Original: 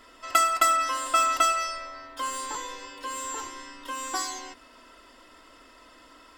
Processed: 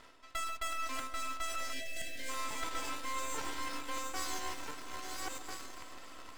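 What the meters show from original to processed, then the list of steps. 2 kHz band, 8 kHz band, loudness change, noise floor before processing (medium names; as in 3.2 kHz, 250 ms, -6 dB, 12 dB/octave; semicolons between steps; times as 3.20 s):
-8.0 dB, -10.0 dB, -13.5 dB, -54 dBFS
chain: backward echo that repeats 673 ms, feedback 46%, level -8.5 dB; treble shelf 7.7 kHz -5.5 dB; reverse; compression 10:1, threshold -37 dBFS, peak gain reduction 21 dB; reverse; half-wave rectifier; in parallel at -8.5 dB: bit crusher 7-bit; on the sum: echo whose repeats swap between lows and highs 139 ms, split 1.2 kHz, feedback 82%, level -12 dB; time-frequency box 1.72–2.29 s, 750–1500 Hz -29 dB; trim +2 dB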